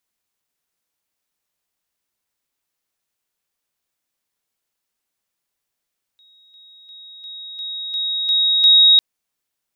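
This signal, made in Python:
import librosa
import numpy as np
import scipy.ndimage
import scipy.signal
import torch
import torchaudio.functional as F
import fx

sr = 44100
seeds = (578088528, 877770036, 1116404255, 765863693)

y = fx.level_ladder(sr, hz=3780.0, from_db=-49.5, step_db=6.0, steps=8, dwell_s=0.35, gap_s=0.0)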